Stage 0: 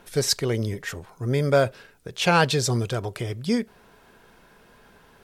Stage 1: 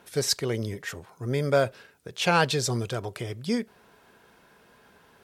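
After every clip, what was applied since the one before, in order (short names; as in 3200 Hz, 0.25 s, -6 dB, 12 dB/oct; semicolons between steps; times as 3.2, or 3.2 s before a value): HPF 58 Hz; low shelf 210 Hz -3 dB; gain -2.5 dB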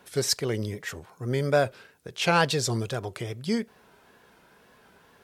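wow and flutter 74 cents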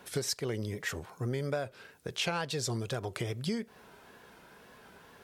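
compressor 8:1, threshold -32 dBFS, peak gain reduction 15.5 dB; gain +2 dB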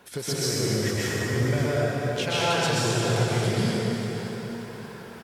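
feedback echo 0.582 s, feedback 37%, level -12 dB; reverb RT60 3.8 s, pre-delay 0.113 s, DRR -9.5 dB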